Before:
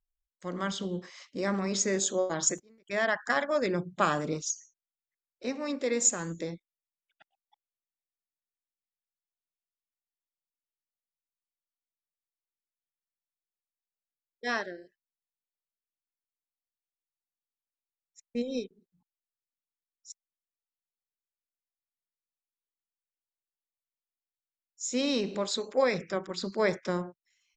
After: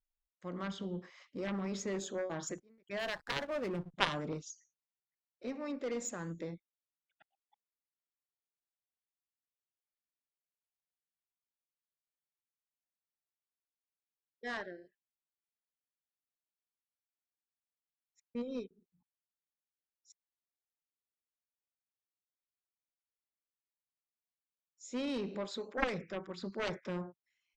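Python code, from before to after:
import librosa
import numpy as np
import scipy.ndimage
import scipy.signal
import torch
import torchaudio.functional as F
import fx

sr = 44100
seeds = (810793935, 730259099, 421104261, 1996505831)

y = fx.bass_treble(x, sr, bass_db=2, treble_db=-12)
y = fx.cheby_harmonics(y, sr, harmonics=(3,), levels_db=(-6,), full_scale_db=-11.5)
y = fx.backlash(y, sr, play_db=-44.0, at=(2.99, 3.94))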